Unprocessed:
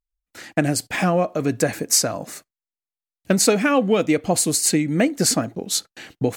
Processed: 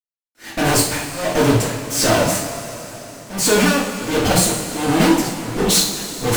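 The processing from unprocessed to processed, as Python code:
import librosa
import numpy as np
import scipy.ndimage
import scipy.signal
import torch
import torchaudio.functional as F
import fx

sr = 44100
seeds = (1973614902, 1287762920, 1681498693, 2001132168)

y = fx.fuzz(x, sr, gain_db=42.0, gate_db=-44.0)
y = y * (1.0 - 0.99 / 2.0 + 0.99 / 2.0 * np.cos(2.0 * np.pi * 1.4 * (np.arange(len(y)) / sr)))
y = fx.rev_double_slope(y, sr, seeds[0], early_s=0.45, late_s=4.2, knee_db=-16, drr_db=-6.0)
y = y * librosa.db_to_amplitude(-5.5)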